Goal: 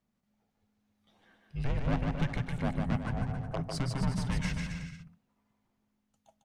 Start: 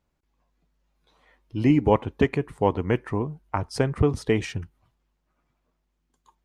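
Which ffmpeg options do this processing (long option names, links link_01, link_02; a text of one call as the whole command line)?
ffmpeg -i in.wav -af "asoftclip=type=tanh:threshold=-21.5dB,afreqshift=-260,aecho=1:1:150|270|366|442.8|504.2:0.631|0.398|0.251|0.158|0.1,volume=-4.5dB" out.wav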